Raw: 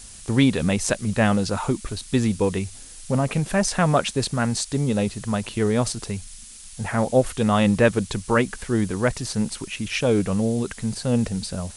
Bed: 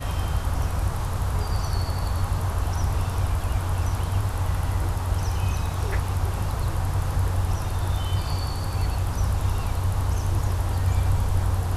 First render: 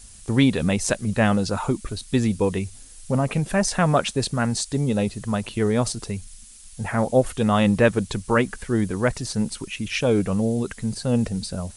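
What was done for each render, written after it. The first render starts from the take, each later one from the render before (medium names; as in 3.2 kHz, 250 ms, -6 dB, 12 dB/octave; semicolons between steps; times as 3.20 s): noise reduction 6 dB, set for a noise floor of -42 dBFS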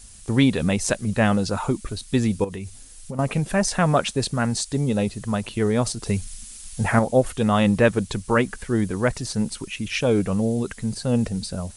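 2.44–3.19 s: compression, threshold -28 dBFS; 6.06–6.99 s: gain +6 dB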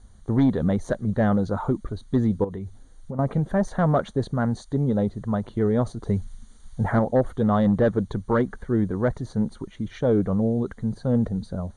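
hard clipper -13 dBFS, distortion -17 dB; boxcar filter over 17 samples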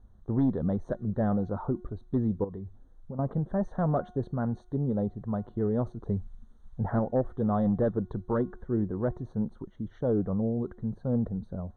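boxcar filter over 18 samples; feedback comb 360 Hz, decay 0.61 s, mix 50%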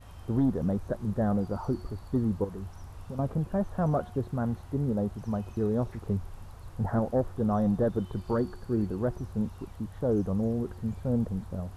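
add bed -21 dB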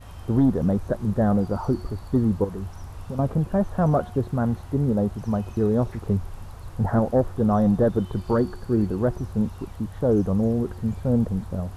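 trim +6.5 dB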